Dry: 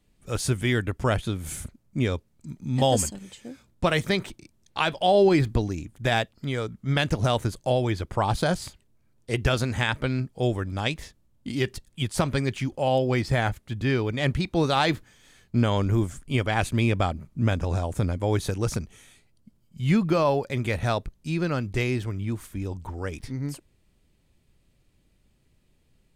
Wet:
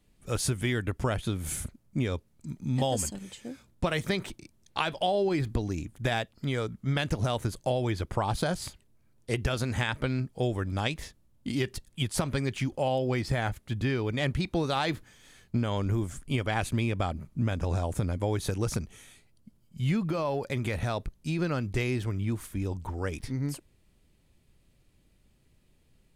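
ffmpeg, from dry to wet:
-filter_complex "[0:a]asettb=1/sr,asplit=3[a][b][c];[a]atrim=end=20.084[d];[b]atrim=start=20.08:end=21.39,asetpts=PTS-STARTPTS,afade=t=in:d=0.004:c=qsin,afade=t=out:st=1.306:d=0.004:c=qsin,acompressor=threshold=-24dB:ratio=4:attack=3.2:release=140:knee=1:detection=peak[e];[c]atrim=start=21.386[f];[d][e]acrossfade=d=0.004:c1=hsin:c2=qsin[g];[g][f]acrossfade=d=0.004:c1=qsin:c2=hsin,equalizer=f=11k:w=4.8:g=4.5,acompressor=threshold=-24dB:ratio=6"

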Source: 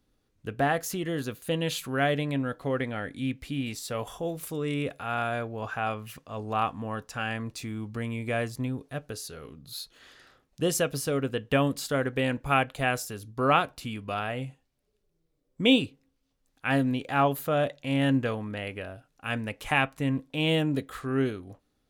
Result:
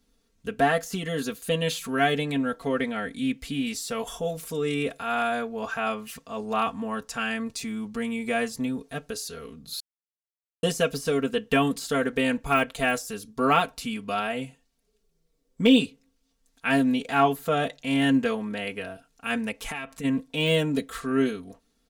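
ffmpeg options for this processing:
-filter_complex "[0:a]asplit=3[a][b][c];[a]afade=t=out:st=19.51:d=0.02[d];[b]acompressor=threshold=-34dB:ratio=5:attack=3.2:release=140:knee=1:detection=peak,afade=t=in:st=19.51:d=0.02,afade=t=out:st=20.03:d=0.02[e];[c]afade=t=in:st=20.03:d=0.02[f];[d][e][f]amix=inputs=3:normalize=0,asplit=3[g][h][i];[g]atrim=end=9.8,asetpts=PTS-STARTPTS,afade=t=out:st=9.796:d=0.004:c=hsin[j];[h]atrim=start=9.8:end=10.63,asetpts=PTS-STARTPTS,volume=0[k];[i]atrim=start=10.63,asetpts=PTS-STARTPTS,afade=t=in:d=0.004:c=hsin[l];[j][k][l]concat=n=3:v=0:a=1,deesser=0.8,equalizer=f=6.9k:t=o:w=1.8:g=6.5,aecho=1:1:4.4:0.91"

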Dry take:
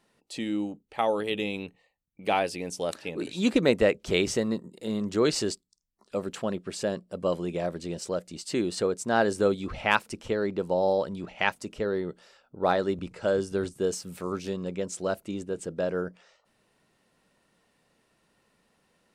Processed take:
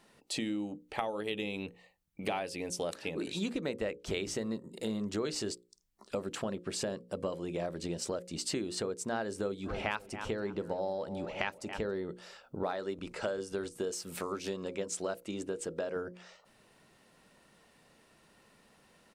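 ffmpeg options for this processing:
-filter_complex "[0:a]asplit=3[a][b][c];[a]afade=t=out:st=9.63:d=0.02[d];[b]asplit=2[e][f];[f]adelay=278,lowpass=f=2k:p=1,volume=-16dB,asplit=2[g][h];[h]adelay=278,lowpass=f=2k:p=1,volume=0.51,asplit=2[i][j];[j]adelay=278,lowpass=f=2k:p=1,volume=0.51,asplit=2[k][l];[l]adelay=278,lowpass=f=2k:p=1,volume=0.51,asplit=2[m][n];[n]adelay=278,lowpass=f=2k:p=1,volume=0.51[o];[e][g][i][k][m][o]amix=inputs=6:normalize=0,afade=t=in:st=9.63:d=0.02,afade=t=out:st=11.92:d=0.02[p];[c]afade=t=in:st=11.92:d=0.02[q];[d][p][q]amix=inputs=3:normalize=0,asettb=1/sr,asplit=3[r][s][t];[r]atrim=end=12.634[u];[s]atrim=start=12.63:end=15.96,asetpts=PTS-STARTPTS,afade=t=in:d=0.004:c=qsin,afade=t=out:st=3.326:d=0.004:c=qsin,equalizer=f=110:t=o:w=2.3:g=-9[v];[t]atrim=start=15.956[w];[u][v]acrossfade=d=0.004:c1=hsin:c2=qsin[x];[x][w]acrossfade=d=0.004:c1=qsin:c2=hsin,acompressor=threshold=-38dB:ratio=6,bandreject=f=60:t=h:w=6,bandreject=f=120:t=h:w=6,bandreject=f=180:t=h:w=6,bandreject=f=240:t=h:w=6,bandreject=f=300:t=h:w=6,bandreject=f=360:t=h:w=6,bandreject=f=420:t=h:w=6,bandreject=f=480:t=h:w=6,bandreject=f=540:t=h:w=6,volume=5.5dB"

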